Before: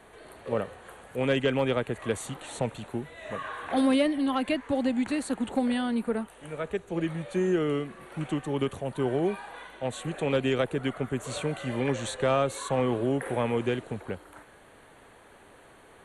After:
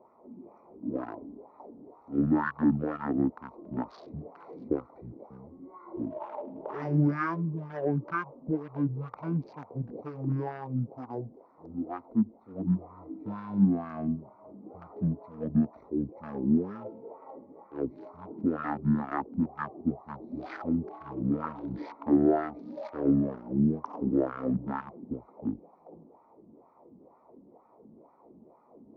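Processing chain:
adaptive Wiener filter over 15 samples
auto-filter band-pass sine 3.8 Hz 390–2,400 Hz
change of speed 0.554×
level +6.5 dB

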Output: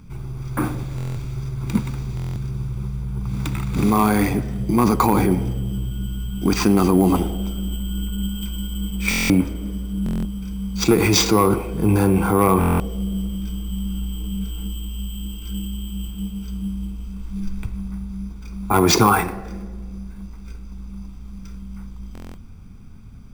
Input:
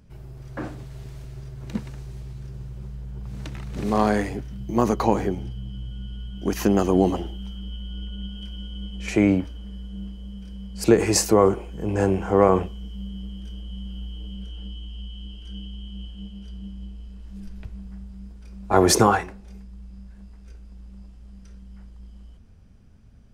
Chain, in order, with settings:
low-pass filter 7,800 Hz 12 dB per octave
parametric band 62 Hz −4.5 dB 1.4 octaves
in parallel at 0 dB: compressor whose output falls as the input rises −26 dBFS, ratio −1
on the sum: bad sample-rate conversion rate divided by 4×, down none, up hold
hard clipping −6.5 dBFS, distortion −25 dB
convolution reverb RT60 1.6 s, pre-delay 4 ms, DRR 15 dB
buffer that repeats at 0:00.96/0:02.15/0:09.09/0:10.04/0:12.59/0:22.13, samples 1,024, times 8

